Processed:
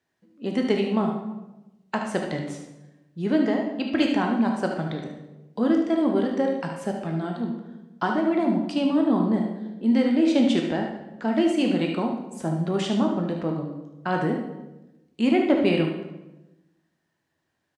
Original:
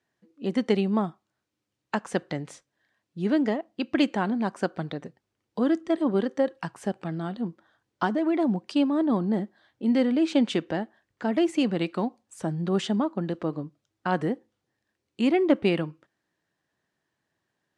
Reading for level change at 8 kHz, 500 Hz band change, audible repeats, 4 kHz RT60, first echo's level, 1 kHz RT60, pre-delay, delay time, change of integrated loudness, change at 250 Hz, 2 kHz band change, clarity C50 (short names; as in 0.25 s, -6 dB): n/a, +2.0 dB, 1, 0.75 s, -8.5 dB, 0.90 s, 12 ms, 74 ms, +2.5 dB, +3.0 dB, +2.5 dB, 3.5 dB